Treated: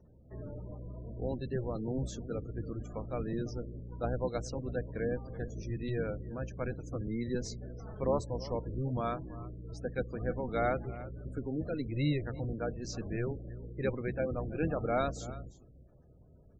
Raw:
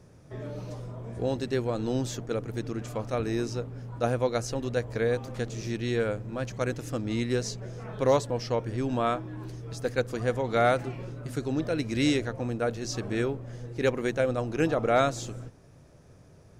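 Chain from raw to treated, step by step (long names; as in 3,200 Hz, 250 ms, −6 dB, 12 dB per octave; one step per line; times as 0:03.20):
sub-octave generator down 1 octave, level +1 dB
single-tap delay 328 ms −16.5 dB
gate on every frequency bin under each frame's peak −25 dB strong
level −8 dB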